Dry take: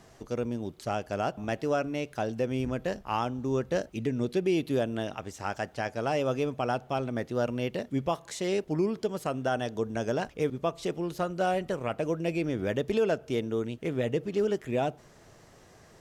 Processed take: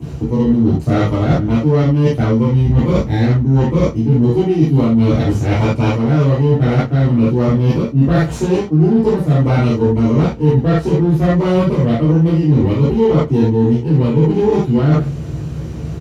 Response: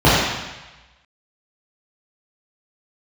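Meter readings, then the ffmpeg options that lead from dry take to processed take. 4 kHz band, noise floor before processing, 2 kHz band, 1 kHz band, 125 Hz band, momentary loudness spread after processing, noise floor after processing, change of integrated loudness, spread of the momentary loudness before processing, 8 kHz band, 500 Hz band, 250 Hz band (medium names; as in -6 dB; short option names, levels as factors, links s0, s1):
+9.0 dB, -56 dBFS, +8.5 dB, +8.5 dB, +24.5 dB, 3 LU, -25 dBFS, +17.0 dB, 5 LU, no reading, +12.0 dB, +19.0 dB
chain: -filter_complex "[0:a]highshelf=f=6800:g=9.5,asplit=2[s0][s1];[s1]adelay=13,volume=0.398[s2];[s0][s2]amix=inputs=2:normalize=0,aecho=1:1:101:0.075,acrossover=split=460|5200[s3][s4][s5];[s3]acontrast=48[s6];[s4]aeval=exprs='abs(val(0))':c=same[s7];[s6][s7][s5]amix=inputs=3:normalize=0[s8];[1:a]atrim=start_sample=2205,atrim=end_sample=4410[s9];[s8][s9]afir=irnorm=-1:irlink=0,areverse,acompressor=threshold=0.631:ratio=6,areverse,volume=0.473"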